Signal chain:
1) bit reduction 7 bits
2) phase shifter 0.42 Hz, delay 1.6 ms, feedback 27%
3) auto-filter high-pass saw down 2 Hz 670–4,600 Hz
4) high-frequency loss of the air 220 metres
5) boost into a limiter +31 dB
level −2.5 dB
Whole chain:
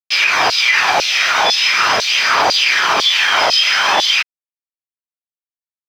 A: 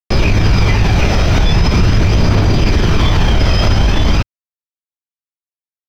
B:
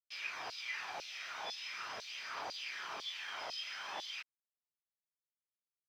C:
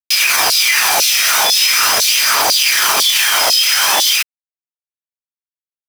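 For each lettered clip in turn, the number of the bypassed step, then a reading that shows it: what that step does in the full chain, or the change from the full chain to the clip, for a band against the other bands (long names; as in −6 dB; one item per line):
3, 125 Hz band +39.5 dB
5, change in crest factor +5.0 dB
4, 8 kHz band +13.5 dB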